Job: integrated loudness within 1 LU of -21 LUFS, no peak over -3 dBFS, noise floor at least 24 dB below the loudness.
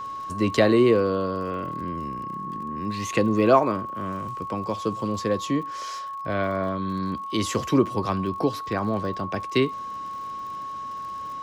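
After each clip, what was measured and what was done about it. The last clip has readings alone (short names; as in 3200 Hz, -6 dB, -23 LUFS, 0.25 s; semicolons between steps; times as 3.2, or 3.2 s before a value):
ticks 48/s; steady tone 1100 Hz; tone level -31 dBFS; loudness -25.5 LUFS; peak -5.5 dBFS; loudness target -21.0 LUFS
-> de-click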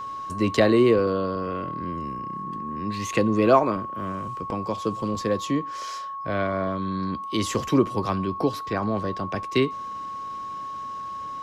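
ticks 0.26/s; steady tone 1100 Hz; tone level -31 dBFS
-> notch 1100 Hz, Q 30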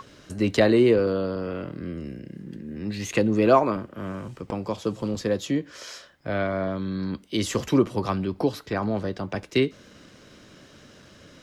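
steady tone none; loudness -25.5 LUFS; peak -5.5 dBFS; loudness target -21.0 LUFS
-> gain +4.5 dB; limiter -3 dBFS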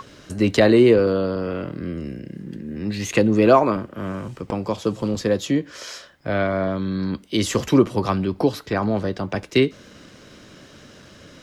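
loudness -21.0 LUFS; peak -3.0 dBFS; noise floor -47 dBFS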